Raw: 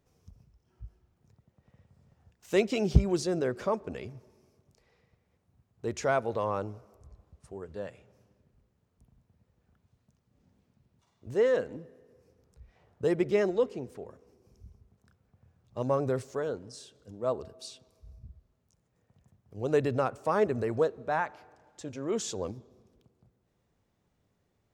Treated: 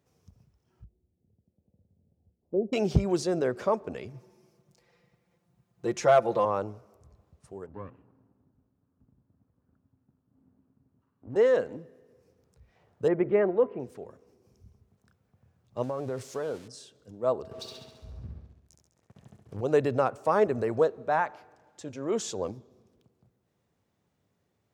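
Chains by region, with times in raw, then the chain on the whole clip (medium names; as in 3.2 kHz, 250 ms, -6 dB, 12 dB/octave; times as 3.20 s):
0.84–2.73 s: Gaussian low-pass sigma 17 samples + peaking EQ 130 Hz -10.5 dB 0.49 oct
4.13–6.45 s: comb 5.8 ms, depth 91% + overload inside the chain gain 15 dB
7.66–11.36 s: comb filter that takes the minimum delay 0.71 ms + low-pass 1.1 kHz + peaking EQ 270 Hz +14 dB 0.21 oct
13.08–13.80 s: low-pass 2.2 kHz 24 dB/octave + de-hum 333.4 Hz, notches 4
15.83–16.68 s: zero-crossing glitches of -33 dBFS + compression 10:1, threshold -30 dBFS + distance through air 68 m
17.51–19.61 s: low-pass that closes with the level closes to 1.9 kHz, closed at -43 dBFS + waveshaping leveller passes 3 + flutter echo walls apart 11.6 m, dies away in 0.85 s
whole clip: high-pass 82 Hz; dynamic bell 740 Hz, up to +4 dB, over -40 dBFS, Q 0.7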